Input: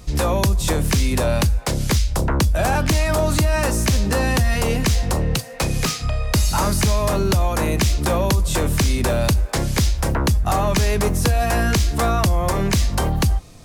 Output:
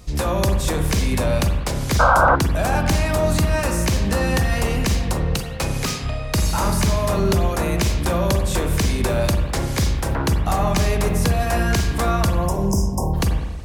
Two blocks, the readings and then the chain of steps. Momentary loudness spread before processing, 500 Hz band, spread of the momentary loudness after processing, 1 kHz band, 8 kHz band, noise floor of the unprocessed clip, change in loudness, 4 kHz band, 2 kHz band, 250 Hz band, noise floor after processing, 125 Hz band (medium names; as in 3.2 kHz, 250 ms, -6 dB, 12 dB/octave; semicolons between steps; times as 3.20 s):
3 LU, 0.0 dB, 4 LU, +1.5 dB, -2.5 dB, -30 dBFS, -0.5 dB, -2.0 dB, +0.5 dB, 0.0 dB, -26 dBFS, -1.0 dB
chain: spectral selection erased 12.33–13.14 s, 1.1–4.9 kHz; spring tank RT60 1.3 s, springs 40/46/51 ms, chirp 55 ms, DRR 4 dB; painted sound noise, 1.99–2.36 s, 480–1600 Hz -12 dBFS; trim -2.5 dB